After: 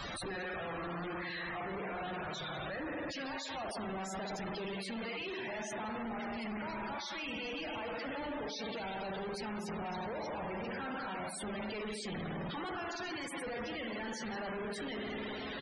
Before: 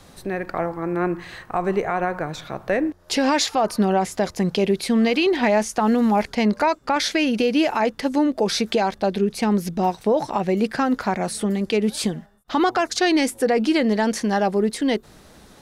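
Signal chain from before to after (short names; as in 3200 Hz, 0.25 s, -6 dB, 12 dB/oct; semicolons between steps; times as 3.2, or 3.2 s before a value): tilt shelf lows -8.5 dB, about 1200 Hz; notches 50/100/150/200/250/300/350 Hz; reverse; compressor 16:1, threshold -32 dBFS, peak gain reduction 22 dB; reverse; wrapped overs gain 24.5 dB; spring tank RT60 2.1 s, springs 52 ms, chirp 40 ms, DRR 0 dB; Schmitt trigger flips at -49.5 dBFS; on a send: swung echo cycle 1.13 s, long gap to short 1.5:1, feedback 64%, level -20 dB; on the sum: loudest bins only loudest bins 64; downsampling 22050 Hz; gain -4 dB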